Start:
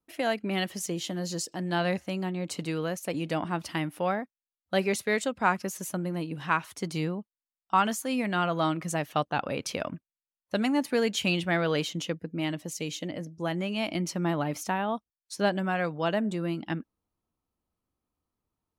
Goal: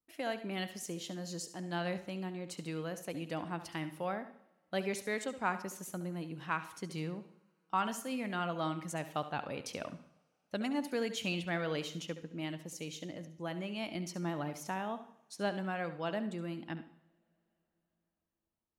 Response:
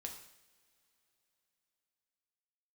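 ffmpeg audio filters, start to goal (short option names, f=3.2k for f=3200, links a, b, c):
-filter_complex "[0:a]asplit=2[a][b];[1:a]atrim=start_sample=2205,adelay=69[c];[b][c]afir=irnorm=-1:irlink=0,volume=-8dB[d];[a][d]amix=inputs=2:normalize=0,volume=-9dB"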